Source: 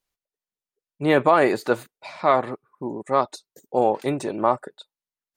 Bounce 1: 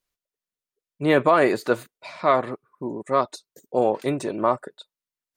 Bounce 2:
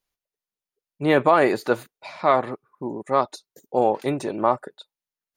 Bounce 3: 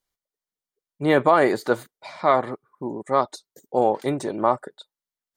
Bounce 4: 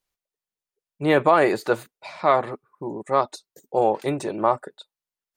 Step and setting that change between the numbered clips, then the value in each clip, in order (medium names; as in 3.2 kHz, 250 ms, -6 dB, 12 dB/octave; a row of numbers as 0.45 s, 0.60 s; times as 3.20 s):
band-stop, frequency: 820 Hz, 8 kHz, 2.6 kHz, 250 Hz